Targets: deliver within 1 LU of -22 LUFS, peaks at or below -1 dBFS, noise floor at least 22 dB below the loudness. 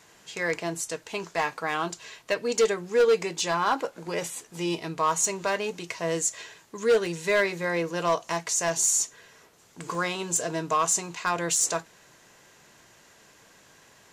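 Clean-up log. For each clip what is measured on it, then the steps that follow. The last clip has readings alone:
clipped 0.6%; flat tops at -16.0 dBFS; dropouts 2; longest dropout 1.2 ms; loudness -26.5 LUFS; peak -16.0 dBFS; loudness target -22.0 LUFS
-> clip repair -16 dBFS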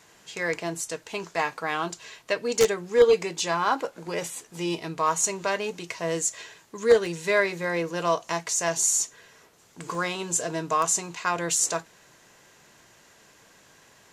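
clipped 0.0%; dropouts 2; longest dropout 1.2 ms
-> interpolate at 7.06/9.95, 1.2 ms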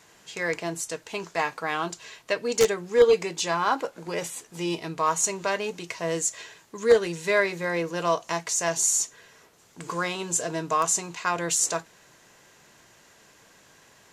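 dropouts 0; loudness -26.0 LUFS; peak -7.0 dBFS; loudness target -22.0 LUFS
-> gain +4 dB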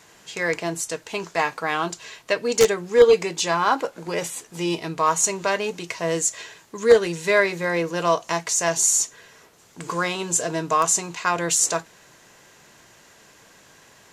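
loudness -22.0 LUFS; peak -3.0 dBFS; noise floor -53 dBFS

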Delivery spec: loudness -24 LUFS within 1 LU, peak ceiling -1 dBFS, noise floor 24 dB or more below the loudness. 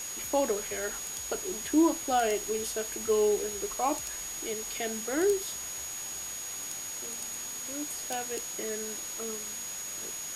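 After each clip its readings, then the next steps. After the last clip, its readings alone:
steady tone 6700 Hz; tone level -37 dBFS; noise floor -39 dBFS; noise floor target -56 dBFS; loudness -31.5 LUFS; peak -13.5 dBFS; loudness target -24.0 LUFS
-> notch 6700 Hz, Q 30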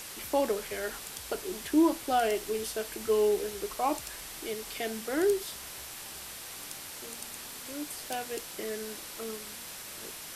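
steady tone none; noise floor -44 dBFS; noise floor target -57 dBFS
-> denoiser 13 dB, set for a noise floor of -44 dBFS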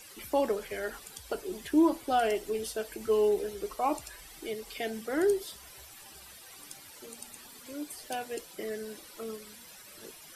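noise floor -51 dBFS; noise floor target -56 dBFS
-> denoiser 6 dB, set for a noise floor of -51 dBFS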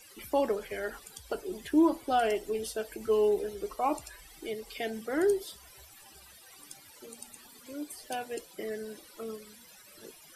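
noise floor -55 dBFS; noise floor target -56 dBFS
-> denoiser 6 dB, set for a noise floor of -55 dBFS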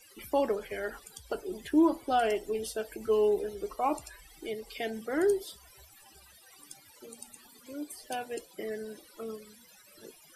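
noise floor -58 dBFS; loudness -32.0 LUFS; peak -14.5 dBFS; loudness target -24.0 LUFS
-> gain +8 dB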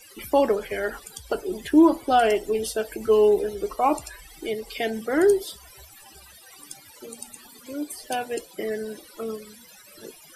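loudness -24.0 LUFS; peak -6.5 dBFS; noise floor -50 dBFS

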